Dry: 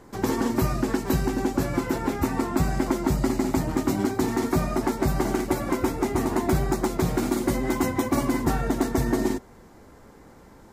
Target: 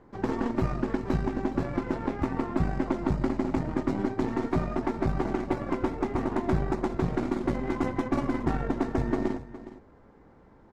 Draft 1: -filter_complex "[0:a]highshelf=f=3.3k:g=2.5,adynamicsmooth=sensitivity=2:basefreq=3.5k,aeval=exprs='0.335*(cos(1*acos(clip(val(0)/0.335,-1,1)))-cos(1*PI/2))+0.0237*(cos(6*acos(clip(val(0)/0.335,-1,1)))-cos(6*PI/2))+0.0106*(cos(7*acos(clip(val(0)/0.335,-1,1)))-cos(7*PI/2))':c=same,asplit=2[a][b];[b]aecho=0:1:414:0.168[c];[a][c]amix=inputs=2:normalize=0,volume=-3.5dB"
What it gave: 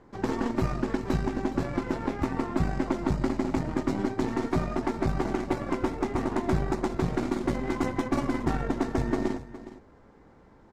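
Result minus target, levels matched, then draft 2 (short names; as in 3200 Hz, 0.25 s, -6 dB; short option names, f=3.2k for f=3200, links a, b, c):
8000 Hz band +7.0 dB
-filter_complex "[0:a]highshelf=f=3.3k:g=-5.5,adynamicsmooth=sensitivity=2:basefreq=3.5k,aeval=exprs='0.335*(cos(1*acos(clip(val(0)/0.335,-1,1)))-cos(1*PI/2))+0.0237*(cos(6*acos(clip(val(0)/0.335,-1,1)))-cos(6*PI/2))+0.0106*(cos(7*acos(clip(val(0)/0.335,-1,1)))-cos(7*PI/2))':c=same,asplit=2[a][b];[b]aecho=0:1:414:0.168[c];[a][c]amix=inputs=2:normalize=0,volume=-3.5dB"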